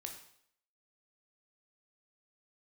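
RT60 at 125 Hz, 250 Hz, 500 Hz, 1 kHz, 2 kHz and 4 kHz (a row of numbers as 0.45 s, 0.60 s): 0.60 s, 0.65 s, 0.65 s, 0.65 s, 0.65 s, 0.65 s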